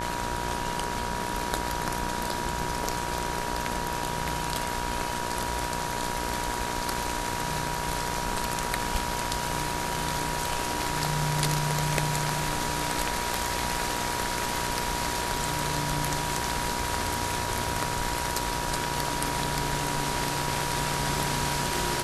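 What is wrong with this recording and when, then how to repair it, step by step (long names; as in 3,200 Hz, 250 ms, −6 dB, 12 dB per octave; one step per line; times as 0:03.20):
mains buzz 60 Hz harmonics 29 −35 dBFS
whistle 960 Hz −34 dBFS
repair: hum removal 60 Hz, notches 29
notch filter 960 Hz, Q 30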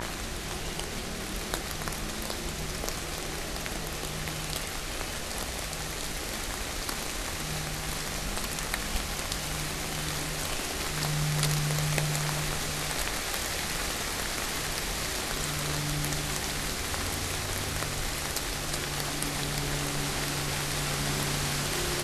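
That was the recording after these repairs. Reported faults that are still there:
none of them is left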